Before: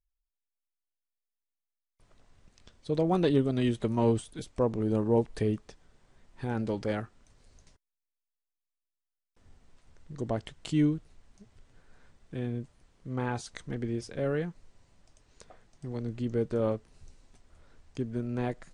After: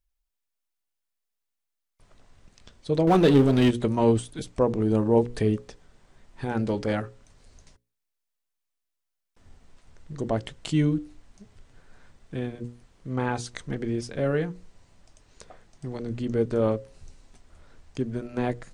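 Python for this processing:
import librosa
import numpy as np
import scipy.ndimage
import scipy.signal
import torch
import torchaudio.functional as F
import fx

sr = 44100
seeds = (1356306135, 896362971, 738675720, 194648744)

y = fx.hum_notches(x, sr, base_hz=60, count=9)
y = fx.power_curve(y, sr, exponent=0.7, at=(3.07, 3.71))
y = y * librosa.db_to_amplitude(5.5)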